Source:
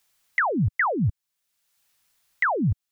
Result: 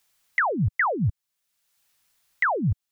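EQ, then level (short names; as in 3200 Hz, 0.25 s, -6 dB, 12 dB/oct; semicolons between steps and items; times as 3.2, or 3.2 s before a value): dynamic EQ 270 Hz, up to -5 dB, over -37 dBFS, Q 2.2; 0.0 dB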